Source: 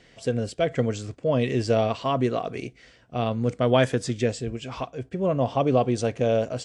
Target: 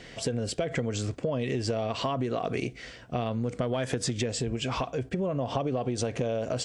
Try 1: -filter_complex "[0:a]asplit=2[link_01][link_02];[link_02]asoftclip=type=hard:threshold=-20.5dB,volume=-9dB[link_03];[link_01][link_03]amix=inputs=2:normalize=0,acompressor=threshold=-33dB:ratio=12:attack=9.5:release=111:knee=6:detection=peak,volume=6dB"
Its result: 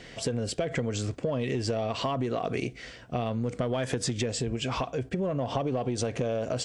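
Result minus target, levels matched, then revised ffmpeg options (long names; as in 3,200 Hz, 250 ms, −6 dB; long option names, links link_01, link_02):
hard clipping: distortion +11 dB
-filter_complex "[0:a]asplit=2[link_01][link_02];[link_02]asoftclip=type=hard:threshold=-13.5dB,volume=-9dB[link_03];[link_01][link_03]amix=inputs=2:normalize=0,acompressor=threshold=-33dB:ratio=12:attack=9.5:release=111:knee=6:detection=peak,volume=6dB"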